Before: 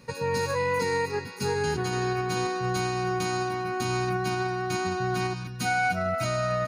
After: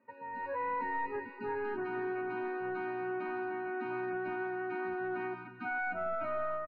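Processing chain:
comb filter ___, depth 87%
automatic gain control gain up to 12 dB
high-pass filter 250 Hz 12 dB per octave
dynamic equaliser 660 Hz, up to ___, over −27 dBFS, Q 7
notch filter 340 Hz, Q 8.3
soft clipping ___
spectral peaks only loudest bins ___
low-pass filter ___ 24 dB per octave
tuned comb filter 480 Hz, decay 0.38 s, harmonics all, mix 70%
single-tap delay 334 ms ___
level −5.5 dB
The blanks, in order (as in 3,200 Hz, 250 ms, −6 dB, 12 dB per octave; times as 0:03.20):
3.2 ms, −3 dB, −14.5 dBFS, 64, 1,800 Hz, −21.5 dB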